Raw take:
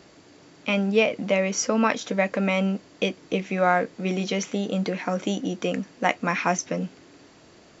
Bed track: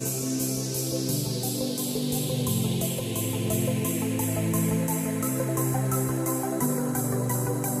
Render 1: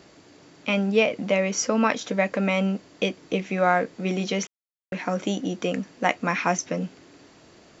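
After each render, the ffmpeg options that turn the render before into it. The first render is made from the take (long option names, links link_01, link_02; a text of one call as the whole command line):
ffmpeg -i in.wav -filter_complex "[0:a]asplit=3[link_01][link_02][link_03];[link_01]atrim=end=4.47,asetpts=PTS-STARTPTS,afade=type=out:start_time=4.466:duration=0.004:curve=hsin[link_04];[link_02]atrim=start=4.47:end=4.92,asetpts=PTS-STARTPTS,volume=0[link_05];[link_03]atrim=start=4.92,asetpts=PTS-STARTPTS,afade=type=in:duration=0.004:curve=hsin[link_06];[link_04][link_05][link_06]concat=n=3:v=0:a=1" out.wav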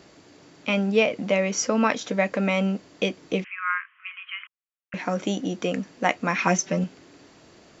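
ffmpeg -i in.wav -filter_complex "[0:a]asettb=1/sr,asplit=3[link_01][link_02][link_03];[link_01]atrim=end=3.444[link_04];[link_02]atrim=start=3.44:end=4.94,asetpts=PTS-STARTPTS,afade=type=in:duration=0.004:curve=qsin,afade=type=out:start_time=1.496:duration=0.004:curve=qsin,asuperpass=centerf=1800:order=20:qfactor=0.89[link_05];[link_03]atrim=start=4.936[link_06];[link_04][link_05]acrossfade=duration=0.004:curve1=hsin:curve2=qsin[link_07];[link_07][link_06]acrossfade=duration=0.004:curve1=qsin:curve2=hsin,asettb=1/sr,asplit=3[link_08][link_09][link_10];[link_08]atrim=end=6.384[link_11];[link_09]atrim=start=6.38:end=6.84,asetpts=PTS-STARTPTS,afade=type=in:duration=0.004:curve=qsin,afade=type=out:start_time=0.456:duration=0.004:curve=qsin,aecho=1:1:5.2:0.86,atrim=end_sample=20286[link_12];[link_10]atrim=start=6.836[link_13];[link_11][link_12]acrossfade=duration=0.004:curve1=hsin:curve2=qsin[link_14];[link_14][link_13]acrossfade=duration=0.004:curve1=qsin:curve2=hsin" out.wav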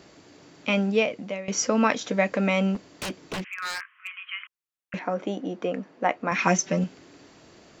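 ffmpeg -i in.wav -filter_complex "[0:a]asettb=1/sr,asplit=3[link_01][link_02][link_03];[link_01]atrim=end=2.754[link_04];[link_02]atrim=start=2.75:end=4.27,asetpts=PTS-STARTPTS,afade=type=in:duration=0.004:curve=qsin,afade=type=out:start_time=1.516:duration=0.004:curve=qsin,aeval=exprs='0.0501*(abs(mod(val(0)/0.0501+3,4)-2)-1)':channel_layout=same[link_05];[link_03]atrim=start=4.266[link_06];[link_04][link_05]acrossfade=duration=0.004:curve1=hsin:curve2=qsin[link_07];[link_07][link_06]acrossfade=duration=0.004:curve1=qsin:curve2=hsin,asettb=1/sr,asplit=3[link_08][link_09][link_10];[link_08]atrim=end=4.994[link_11];[link_09]atrim=start=4.99:end=6.32,asetpts=PTS-STARTPTS,afade=type=in:duration=0.004:curve=qsin,afade=type=out:start_time=1.326:duration=0.004:curve=qsin,bandpass=frequency=640:width_type=q:width=0.56[link_12];[link_10]atrim=start=6.316[link_13];[link_11][link_12]acrossfade=duration=0.004:curve1=hsin:curve2=qsin[link_14];[link_14][link_13]acrossfade=duration=0.004:curve1=qsin:curve2=hsin,asplit=2[link_15][link_16];[link_15]atrim=end=1.48,asetpts=PTS-STARTPTS,afade=type=out:start_time=0.8:duration=0.68:silence=0.141254[link_17];[link_16]atrim=start=1.48,asetpts=PTS-STARTPTS,afade=type=in:duration=0.004:curve=hsin:silence=0.141254[link_18];[link_17][link_18]concat=n=2:v=0:a=1" out.wav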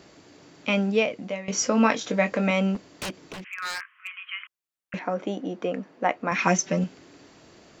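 ffmpeg -i in.wav -filter_complex "[0:a]asettb=1/sr,asplit=3[link_01][link_02][link_03];[link_01]atrim=end=1.204[link_04];[link_02]atrim=start=1.2:end=2.51,asetpts=PTS-STARTPTS,afade=type=in:duration=0.004:curve=qsin,afade=type=out:start_time=1.306:duration=0.004:curve=qsin,asplit=2[link_05][link_06];[link_06]adelay=22,volume=-8dB[link_07];[link_05][link_07]amix=inputs=2:normalize=0,atrim=end_sample=57771[link_08];[link_03]atrim=start=2.506[link_09];[link_04][link_08]acrossfade=duration=0.004:curve1=hsin:curve2=qsin[link_10];[link_10][link_09]acrossfade=duration=0.004:curve1=qsin:curve2=hsin,asettb=1/sr,asplit=3[link_11][link_12][link_13];[link_11]atrim=end=3.104[link_14];[link_12]atrim=start=3.1:end=3.53,asetpts=PTS-STARTPTS,afade=type=in:duration=0.004:curve=qsin,afade=type=out:start_time=0.426:duration=0.004:curve=qsin,acompressor=threshold=-35dB:ratio=10:attack=3.2:release=140:knee=1:detection=peak[link_15];[link_13]atrim=start=3.526[link_16];[link_14][link_15]acrossfade=duration=0.004:curve1=hsin:curve2=qsin[link_17];[link_17][link_16]acrossfade=duration=0.004:curve1=qsin:curve2=hsin" out.wav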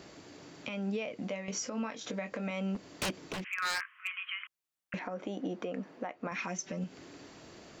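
ffmpeg -i in.wav -af "acompressor=threshold=-29dB:ratio=4,alimiter=level_in=2dB:limit=-24dB:level=0:latency=1:release=237,volume=-2dB" out.wav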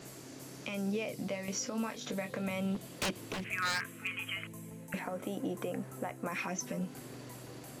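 ffmpeg -i in.wav -i bed.wav -filter_complex "[1:a]volume=-22.5dB[link_01];[0:a][link_01]amix=inputs=2:normalize=0" out.wav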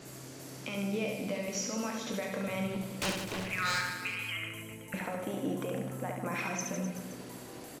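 ffmpeg -i in.wav -filter_complex "[0:a]asplit=2[link_01][link_02];[link_02]adelay=37,volume=-12.5dB[link_03];[link_01][link_03]amix=inputs=2:normalize=0,aecho=1:1:70|154|254.8|375.8|520.9:0.631|0.398|0.251|0.158|0.1" out.wav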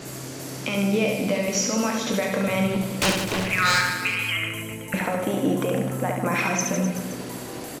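ffmpeg -i in.wav -af "volume=11.5dB" out.wav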